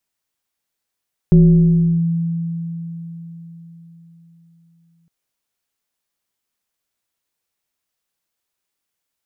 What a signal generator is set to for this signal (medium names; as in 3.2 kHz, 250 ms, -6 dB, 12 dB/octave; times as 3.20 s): FM tone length 3.76 s, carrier 167 Hz, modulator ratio 1.19, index 0.51, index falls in 0.72 s linear, decay 4.43 s, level -5 dB